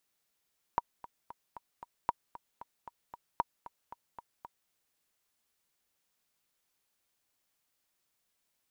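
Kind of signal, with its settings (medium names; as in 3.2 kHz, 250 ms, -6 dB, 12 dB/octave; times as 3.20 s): metronome 229 bpm, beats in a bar 5, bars 3, 950 Hz, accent 17.5 dB -14.5 dBFS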